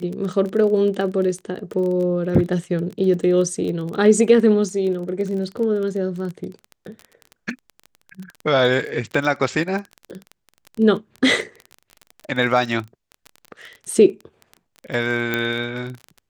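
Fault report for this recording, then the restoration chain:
crackle 22/s -27 dBFS
15.34 pop -8 dBFS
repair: de-click

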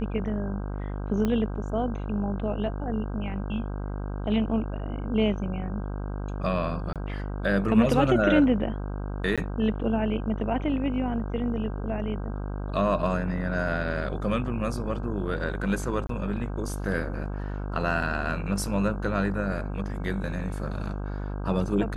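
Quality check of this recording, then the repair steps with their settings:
buzz 50 Hz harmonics 32 -32 dBFS
1.25 pop -15 dBFS
6.93–6.96 gap 27 ms
9.36–9.38 gap 16 ms
16.07–16.09 gap 23 ms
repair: de-click; de-hum 50 Hz, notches 32; interpolate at 6.93, 27 ms; interpolate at 9.36, 16 ms; interpolate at 16.07, 23 ms

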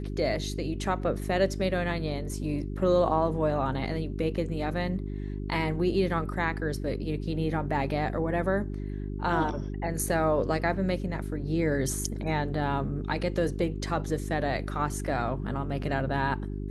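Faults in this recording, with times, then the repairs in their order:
hum 50 Hz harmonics 8 -34 dBFS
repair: de-hum 50 Hz, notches 8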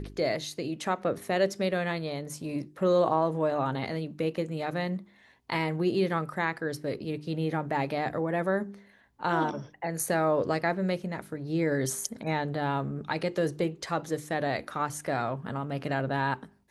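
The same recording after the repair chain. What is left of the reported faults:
none

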